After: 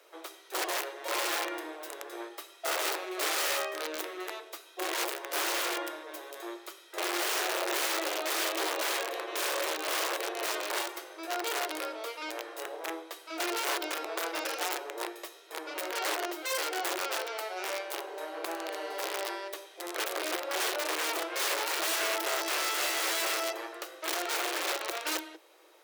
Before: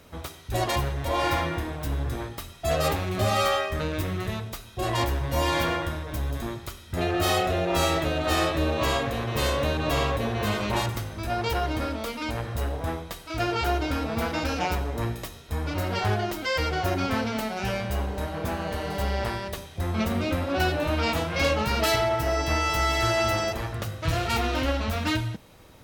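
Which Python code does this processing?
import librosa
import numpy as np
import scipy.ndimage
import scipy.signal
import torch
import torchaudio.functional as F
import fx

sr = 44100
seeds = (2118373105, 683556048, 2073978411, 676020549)

y = (np.mod(10.0 ** (19.5 / 20.0) * x + 1.0, 2.0) - 1.0) / 10.0 ** (19.5 / 20.0)
y = scipy.signal.sosfilt(scipy.signal.cheby1(8, 1.0, 320.0, 'highpass', fs=sr, output='sos'), y)
y = y * 10.0 ** (-4.5 / 20.0)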